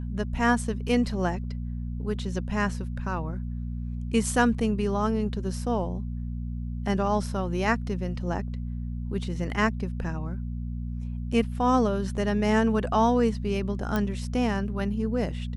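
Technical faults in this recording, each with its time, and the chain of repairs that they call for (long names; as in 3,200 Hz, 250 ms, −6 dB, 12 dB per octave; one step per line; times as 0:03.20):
mains hum 60 Hz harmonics 4 −32 dBFS
0:13.96: click −14 dBFS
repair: click removal
hum removal 60 Hz, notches 4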